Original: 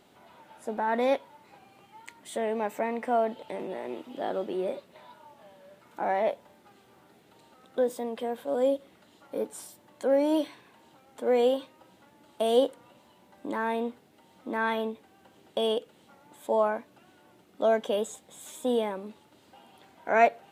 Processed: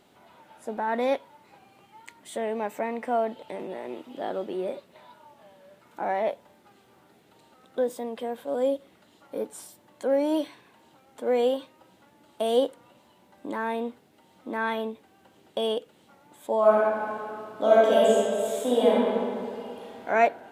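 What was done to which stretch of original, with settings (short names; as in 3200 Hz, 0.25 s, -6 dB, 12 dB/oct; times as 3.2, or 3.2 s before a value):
16.59–20.08 reverb throw, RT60 2.4 s, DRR -7 dB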